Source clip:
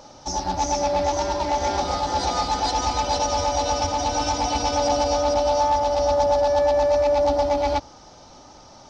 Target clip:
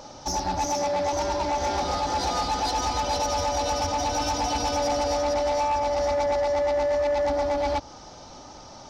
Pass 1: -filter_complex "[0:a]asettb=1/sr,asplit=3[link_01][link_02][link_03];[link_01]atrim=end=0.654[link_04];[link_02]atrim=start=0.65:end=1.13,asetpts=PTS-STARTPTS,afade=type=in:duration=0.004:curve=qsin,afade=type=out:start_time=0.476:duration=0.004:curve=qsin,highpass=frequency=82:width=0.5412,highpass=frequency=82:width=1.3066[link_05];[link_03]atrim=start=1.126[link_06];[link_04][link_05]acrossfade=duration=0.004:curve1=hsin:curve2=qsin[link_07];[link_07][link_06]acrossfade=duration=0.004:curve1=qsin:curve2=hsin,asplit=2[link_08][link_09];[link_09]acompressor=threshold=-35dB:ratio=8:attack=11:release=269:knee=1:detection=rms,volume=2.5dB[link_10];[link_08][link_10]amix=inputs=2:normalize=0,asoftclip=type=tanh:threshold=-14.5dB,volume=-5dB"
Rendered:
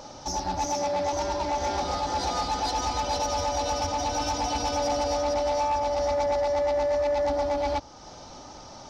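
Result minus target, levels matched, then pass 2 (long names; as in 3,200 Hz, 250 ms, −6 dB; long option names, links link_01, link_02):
downward compressor: peak gain reduction +9 dB
-filter_complex "[0:a]asettb=1/sr,asplit=3[link_01][link_02][link_03];[link_01]atrim=end=0.654[link_04];[link_02]atrim=start=0.65:end=1.13,asetpts=PTS-STARTPTS,afade=type=in:duration=0.004:curve=qsin,afade=type=out:start_time=0.476:duration=0.004:curve=qsin,highpass=frequency=82:width=0.5412,highpass=frequency=82:width=1.3066[link_05];[link_03]atrim=start=1.126[link_06];[link_04][link_05]acrossfade=duration=0.004:curve1=hsin:curve2=qsin[link_07];[link_07][link_06]acrossfade=duration=0.004:curve1=qsin:curve2=hsin,asplit=2[link_08][link_09];[link_09]acompressor=threshold=-24.5dB:ratio=8:attack=11:release=269:knee=1:detection=rms,volume=2.5dB[link_10];[link_08][link_10]amix=inputs=2:normalize=0,asoftclip=type=tanh:threshold=-14.5dB,volume=-5dB"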